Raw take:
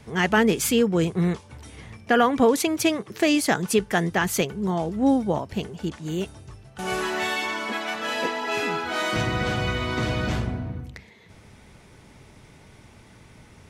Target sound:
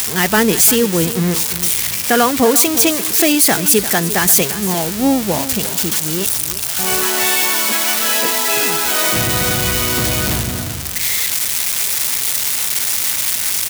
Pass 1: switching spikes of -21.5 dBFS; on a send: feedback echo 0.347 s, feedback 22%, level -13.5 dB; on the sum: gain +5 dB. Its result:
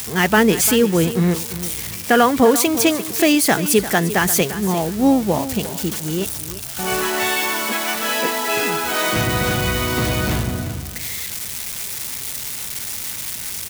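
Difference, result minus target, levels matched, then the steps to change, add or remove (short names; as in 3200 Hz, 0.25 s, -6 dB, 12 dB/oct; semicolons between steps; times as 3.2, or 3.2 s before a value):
switching spikes: distortion -10 dB
change: switching spikes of -11.5 dBFS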